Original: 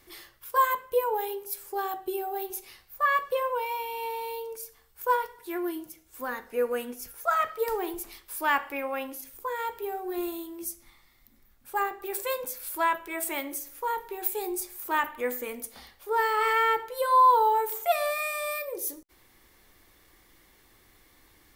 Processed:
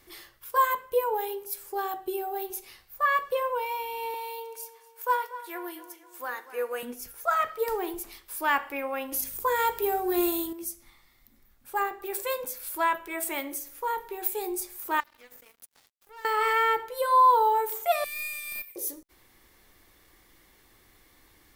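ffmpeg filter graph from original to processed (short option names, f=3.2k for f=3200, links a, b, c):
-filter_complex "[0:a]asettb=1/sr,asplit=3[a][b][c];[a]atrim=end=4.144[d];[b]atrim=start=4.14:end=6.83,asetpts=PTS-STARTPTS,afade=t=in:d=0.004:c=qsin,afade=t=out:st=2.686:d=0.004:c=qsin,highpass=550,asplit=2[e][f];[f]adelay=240,lowpass=f=4.4k:p=1,volume=-14dB,asplit=2[g][h];[h]adelay=240,lowpass=f=4.4k:p=1,volume=0.47,asplit=2[i][j];[j]adelay=240,lowpass=f=4.4k:p=1,volume=0.47,asplit=2[k][l];[l]adelay=240,lowpass=f=4.4k:p=1,volume=0.47[m];[e][g][i][k][m]amix=inputs=5:normalize=0,atrim=end_sample=118629[n];[c]atrim=start=6.826[o];[d][n]acrossfade=d=0.004:c1=hsin:c2=qsin[p];[p][o]acrossfade=d=0.004:c1=qsin:c2=hsin,asettb=1/sr,asplit=3[q][r][s];[q]atrim=end=9.124[t];[r]atrim=start=9.12:end=10.53,asetpts=PTS-STARTPTS,afade=t=in:d=0.004:c=qsin,afade=t=out:st=1.406:d=0.004:c=qsin,bass=f=250:g=-3,treble=f=4k:g=5,aeval=exprs='val(0)+0.000794*(sin(2*PI*50*n/s)+sin(2*PI*2*50*n/s)/2+sin(2*PI*3*50*n/s)/3+sin(2*PI*4*50*n/s)/4+sin(2*PI*5*50*n/s)/5)':c=same,acontrast=67[u];[s]atrim=start=10.526[v];[t][u]acrossfade=d=0.004:c1=hsin:c2=qsin[w];[w][v]acrossfade=d=0.004:c1=qsin:c2=hsin,asettb=1/sr,asplit=3[x][y][z];[x]atrim=end=15.004[aa];[y]atrim=start=15:end=16.25,asetpts=PTS-STARTPTS,afade=t=in:d=0.004:c=qsin,afade=t=out:st=1.246:d=0.004:c=qsin,acompressor=threshold=-42dB:ratio=3:attack=3.2:release=140:knee=1:detection=peak,highpass=f=720:p=1,aeval=exprs='sgn(val(0))*max(abs(val(0))-0.00473,0)':c=same[ab];[z]atrim=start=16.246[ac];[aa][ab]acrossfade=d=0.004:c1=hsin:c2=qsin[ad];[ad][ac]acrossfade=d=0.004:c1=qsin:c2=hsin,asettb=1/sr,asplit=3[ae][af][ag];[ae]atrim=end=18.044[ah];[af]atrim=start=18.04:end=18.76,asetpts=PTS-STARTPTS,afade=t=in:d=0.004:c=qsin,afade=t=out:st=0.716:d=0.004:c=qsin,highpass=f=2.2k:t=q:w=4,aderivative,aeval=exprs='(tanh(15.8*val(0)+0.6)-tanh(0.6))/15.8':c=same[ai];[ag]atrim=start=18.756[aj];[ah][ai]acrossfade=d=0.004:c1=hsin:c2=qsin[ak];[ak][aj]acrossfade=d=0.004:c1=qsin:c2=hsin"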